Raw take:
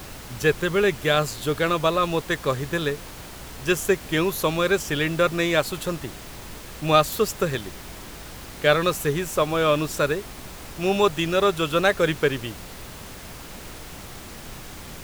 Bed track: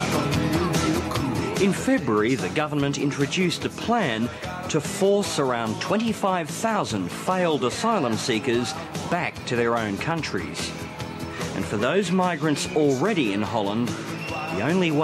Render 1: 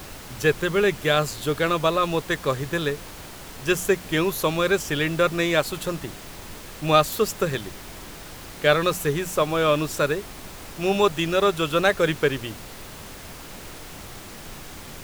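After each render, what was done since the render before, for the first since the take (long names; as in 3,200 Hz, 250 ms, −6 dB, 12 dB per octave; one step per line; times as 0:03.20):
hum removal 60 Hz, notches 4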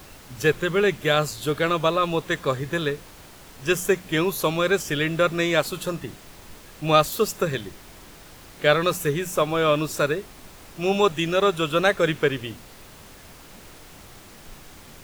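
noise reduction from a noise print 6 dB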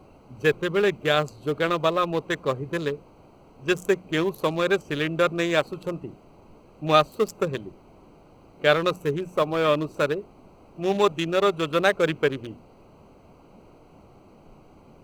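adaptive Wiener filter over 25 samples
low-shelf EQ 96 Hz −10.5 dB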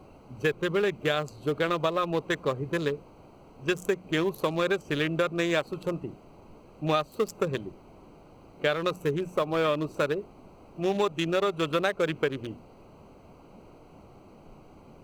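downward compressor 6 to 1, threshold −22 dBFS, peak gain reduction 10 dB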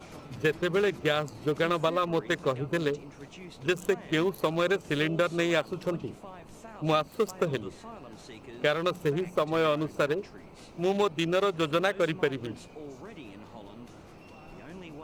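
mix in bed track −23.5 dB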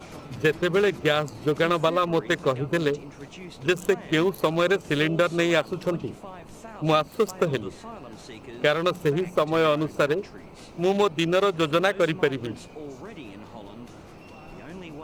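level +4.5 dB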